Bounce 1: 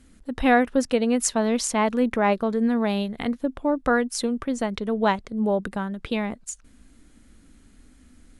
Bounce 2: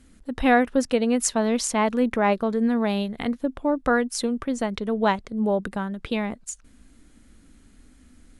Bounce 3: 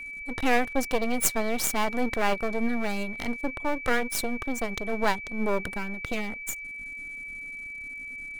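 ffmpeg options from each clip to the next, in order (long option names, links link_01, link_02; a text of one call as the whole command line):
ffmpeg -i in.wav -af anull out.wav
ffmpeg -i in.wav -af "aeval=exprs='max(val(0),0)':channel_layout=same,highshelf=frequency=9100:gain=10,aeval=exprs='val(0)+0.0158*sin(2*PI*2300*n/s)':channel_layout=same" out.wav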